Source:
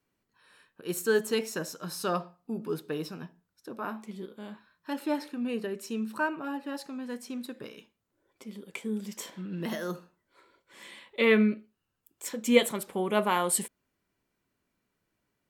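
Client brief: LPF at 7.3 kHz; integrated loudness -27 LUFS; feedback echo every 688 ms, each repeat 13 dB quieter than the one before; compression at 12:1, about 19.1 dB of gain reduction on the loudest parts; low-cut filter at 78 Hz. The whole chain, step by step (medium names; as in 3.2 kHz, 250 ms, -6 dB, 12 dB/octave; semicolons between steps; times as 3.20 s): high-pass 78 Hz; low-pass 7.3 kHz; compression 12:1, threshold -34 dBFS; feedback delay 688 ms, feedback 22%, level -13 dB; trim +13.5 dB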